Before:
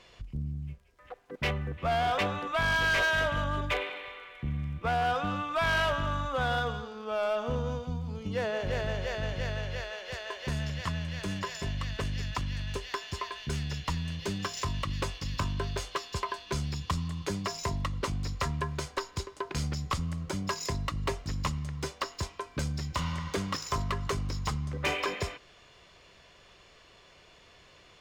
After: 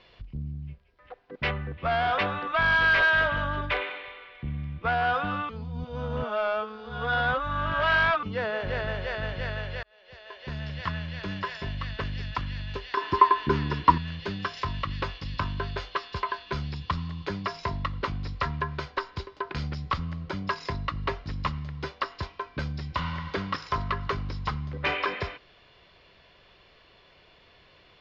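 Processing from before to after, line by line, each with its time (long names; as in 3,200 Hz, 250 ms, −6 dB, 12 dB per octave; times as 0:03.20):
0:05.49–0:08.23: reverse
0:09.83–0:10.82: fade in
0:12.97–0:13.98: hollow resonant body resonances 330/980 Hz, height 18 dB, ringing for 20 ms
whole clip: Butterworth low-pass 4,800 Hz 36 dB per octave; notch filter 1,200 Hz, Q 29; dynamic equaliser 1,400 Hz, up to +7 dB, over −46 dBFS, Q 1.2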